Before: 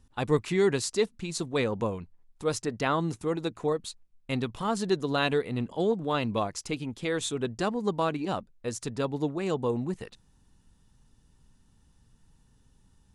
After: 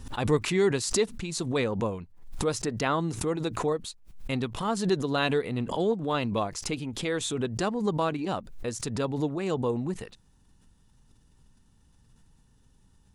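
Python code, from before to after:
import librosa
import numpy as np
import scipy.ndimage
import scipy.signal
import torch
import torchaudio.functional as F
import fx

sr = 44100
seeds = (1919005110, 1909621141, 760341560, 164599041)

y = fx.pre_swell(x, sr, db_per_s=78.0)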